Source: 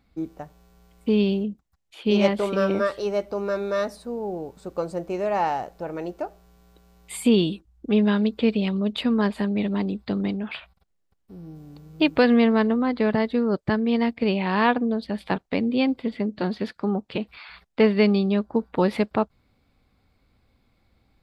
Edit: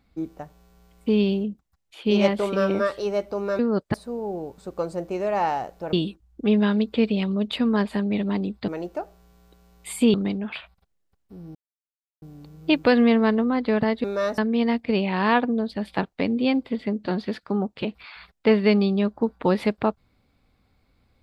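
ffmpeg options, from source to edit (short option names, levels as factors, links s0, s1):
-filter_complex "[0:a]asplit=9[s0][s1][s2][s3][s4][s5][s6][s7][s8];[s0]atrim=end=3.592[s9];[s1]atrim=start=13.358:end=13.712[s10];[s2]atrim=start=3.928:end=5.922[s11];[s3]atrim=start=7.378:end=10.132[s12];[s4]atrim=start=5.918:end=7.382[s13];[s5]atrim=start=10.128:end=11.54,asetpts=PTS-STARTPTS,afade=t=out:st=1.408:d=0.004:c=hsin,apad=pad_dur=0.67[s14];[s6]atrim=start=11.54:end=13.362,asetpts=PTS-STARTPTS,afade=t=in:d=0.004:c=hsin[s15];[s7]atrim=start=3.588:end=3.932[s16];[s8]atrim=start=13.708[s17];[s9][s10]acrossfade=d=0.004:c1=hsin:c2=hsin[s18];[s18][s11]acrossfade=d=0.004:c1=hsin:c2=hsin[s19];[s19][s12]acrossfade=d=0.004:c1=hsin:c2=hsin[s20];[s20][s13]acrossfade=d=0.004:c1=hsin:c2=hsin[s21];[s14][s15]concat=n=2:v=0:a=1[s22];[s21][s22]acrossfade=d=0.004:c1=hsin:c2=hsin[s23];[s23][s16]acrossfade=d=0.004:c1=hsin:c2=hsin[s24];[s24][s17]acrossfade=d=0.004:c1=hsin:c2=hsin"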